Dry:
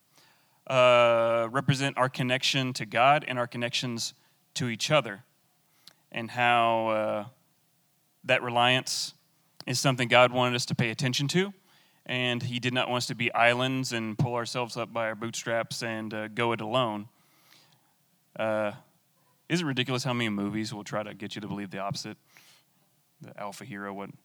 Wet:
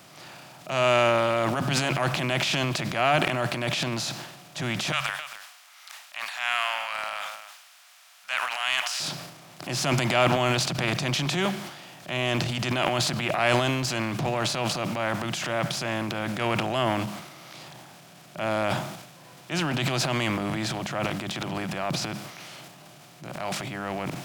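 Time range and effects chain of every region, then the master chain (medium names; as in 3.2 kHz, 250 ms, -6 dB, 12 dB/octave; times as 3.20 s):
4.92–9.00 s: inverse Chebyshev high-pass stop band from 350 Hz, stop band 60 dB + delay 266 ms -22 dB
whole clip: spectral levelling over time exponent 0.6; de-hum 68.59 Hz, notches 3; transient shaper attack -6 dB, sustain +10 dB; trim -3 dB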